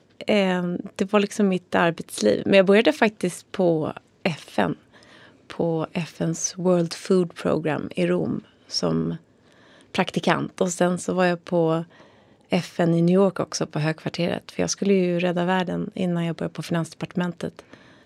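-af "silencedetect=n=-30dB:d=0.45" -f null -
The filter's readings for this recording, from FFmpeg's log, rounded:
silence_start: 4.73
silence_end: 5.50 | silence_duration: 0.77
silence_start: 9.16
silence_end: 9.95 | silence_duration: 0.79
silence_start: 11.83
silence_end: 12.52 | silence_duration: 0.70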